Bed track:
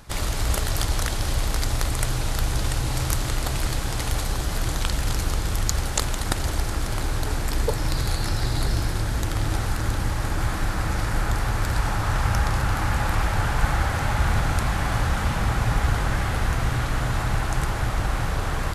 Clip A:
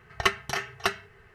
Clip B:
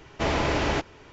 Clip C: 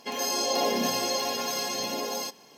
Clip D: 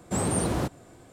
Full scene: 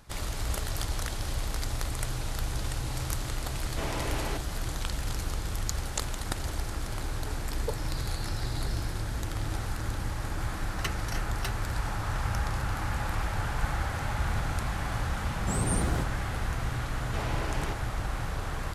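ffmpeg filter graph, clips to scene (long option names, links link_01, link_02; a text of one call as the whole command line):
ffmpeg -i bed.wav -i cue0.wav -i cue1.wav -i cue2.wav -i cue3.wav -filter_complex "[2:a]asplit=2[link_01][link_02];[0:a]volume=-8dB[link_03];[link_01]bandreject=frequency=200:width=12[link_04];[1:a]crystalizer=i=3.5:c=0[link_05];[4:a]bass=frequency=250:gain=6,treble=frequency=4000:gain=5[link_06];[link_04]atrim=end=1.12,asetpts=PTS-STARTPTS,volume=-10dB,afade=type=in:duration=0.004:curve=hsin,afade=type=out:start_time=1.116:duration=0.004:curve=hsin,adelay=157437S[link_07];[link_05]atrim=end=1.34,asetpts=PTS-STARTPTS,volume=-15.5dB,afade=type=in:duration=0.004:curve=hsin,afade=type=out:start_time=1.336:duration=0.004:curve=hsin,adelay=10590[link_08];[link_06]atrim=end=1.12,asetpts=PTS-STARTPTS,volume=-8dB,afade=type=in:duration=0.004:curve=hsin,afade=type=out:start_time=1.116:duration=0.004:curve=hsin,adelay=15360[link_09];[link_02]atrim=end=1.12,asetpts=PTS-STARTPTS,volume=-12dB,afade=type=in:duration=0.004:curve=hsin,afade=type=out:start_time=1.116:duration=0.004:curve=hsin,adelay=16930[link_10];[link_03][link_07][link_08][link_09][link_10]amix=inputs=5:normalize=0" out.wav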